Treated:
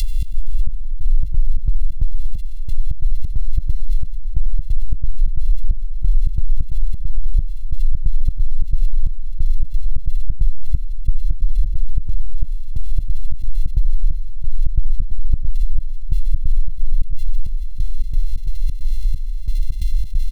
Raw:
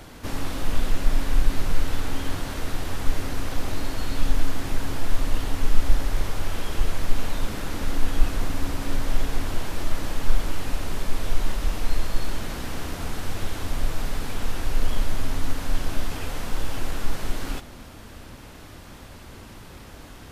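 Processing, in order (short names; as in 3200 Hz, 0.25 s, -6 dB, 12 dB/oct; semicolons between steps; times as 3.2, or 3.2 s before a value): sample sorter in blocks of 64 samples; resonant low shelf 790 Hz +11.5 dB, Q 3; limiter -19 dBFS, peak gain reduction 28 dB; inverse Chebyshev band-stop 170–810 Hz, stop band 80 dB; comb 5.9 ms, depth 53%; on a send: diffused feedback echo 0.626 s, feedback 69%, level -9.5 dB; on the sum: upward compressor, threshold -36 dBFS; step gate "xx.xxx...xx.xx." 134 bpm -24 dB; tone controls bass +7 dB, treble -13 dB; fast leveller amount 70%; gain -1 dB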